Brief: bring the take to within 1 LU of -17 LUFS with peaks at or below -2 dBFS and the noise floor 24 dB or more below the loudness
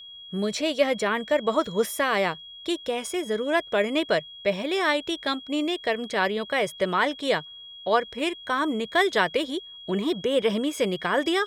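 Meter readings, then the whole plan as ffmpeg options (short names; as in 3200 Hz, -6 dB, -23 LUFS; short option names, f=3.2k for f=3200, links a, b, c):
steady tone 3300 Hz; tone level -41 dBFS; loudness -25.5 LUFS; peak -7.5 dBFS; loudness target -17.0 LUFS
-> -af "bandreject=f=3.3k:w=30"
-af "volume=8.5dB,alimiter=limit=-2dB:level=0:latency=1"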